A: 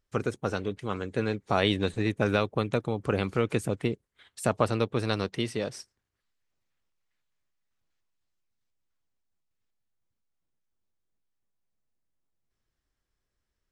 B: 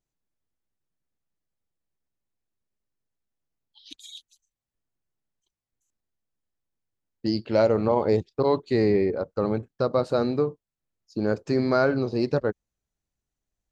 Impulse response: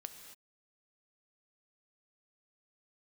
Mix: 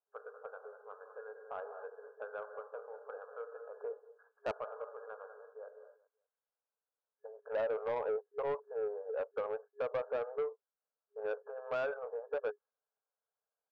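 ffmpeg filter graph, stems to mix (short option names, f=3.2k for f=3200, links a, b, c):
-filter_complex "[0:a]volume=-6dB,asplit=3[a][b][c];[b]volume=-5.5dB[d];[c]volume=-21dB[e];[1:a]acompressor=threshold=-29dB:ratio=3,aexciter=amount=13.8:drive=5.4:freq=3.9k,volume=-0.5dB,asplit=2[f][g];[g]apad=whole_len=604879[h];[a][h]sidechaingate=range=-33dB:threshold=-56dB:ratio=16:detection=peak[i];[2:a]atrim=start_sample=2205[j];[d][j]afir=irnorm=-1:irlink=0[k];[e]aecho=0:1:194|388|582:1|0.21|0.0441[l];[i][f][k][l]amix=inputs=4:normalize=0,afftfilt=real='re*between(b*sr/4096,410,1700)':imag='im*between(b*sr/4096,410,1700)':win_size=4096:overlap=0.75,asoftclip=type=tanh:threshold=-29dB"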